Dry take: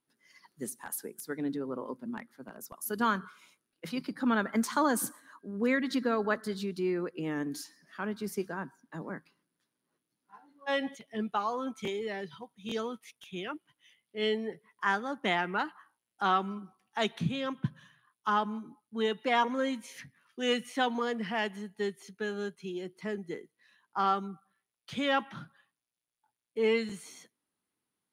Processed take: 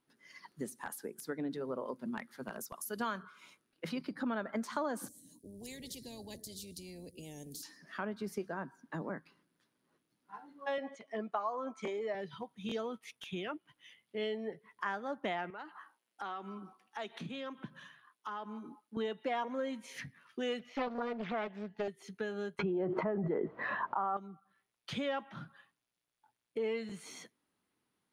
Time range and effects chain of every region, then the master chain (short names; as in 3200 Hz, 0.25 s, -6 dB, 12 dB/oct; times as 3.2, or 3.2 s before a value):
1.51–3.23 high shelf 2400 Hz +9 dB + notch 280 Hz, Q 7.9
5.08–7.63 Chebyshev band-stop 180–8700 Hz + spectral compressor 4:1
10.78–12.15 speaker cabinet 250–8700 Hz, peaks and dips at 630 Hz +4 dB, 1100 Hz +7 dB, 3500 Hz -9 dB + notch 2700 Hz, Q 13
15.5–18.97 HPF 260 Hz + compressor 2:1, threshold -51 dBFS
20.59–21.88 running mean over 5 samples + Doppler distortion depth 0.53 ms
22.59–24.17 synth low-pass 1100 Hz, resonance Q 2 + fast leveller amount 100%
whole clip: dynamic EQ 620 Hz, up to +8 dB, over -48 dBFS, Q 2.7; compressor 3:1, threshold -44 dBFS; high shelf 6400 Hz -9 dB; gain +5.5 dB